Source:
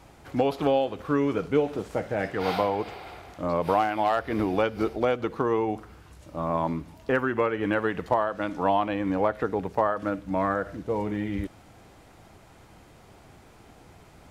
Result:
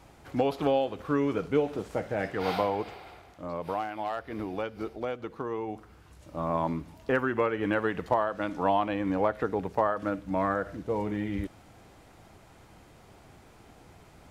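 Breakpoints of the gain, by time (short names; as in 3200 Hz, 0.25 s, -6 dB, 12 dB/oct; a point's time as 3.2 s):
2.77 s -2.5 dB
3.37 s -9 dB
5.54 s -9 dB
6.37 s -2 dB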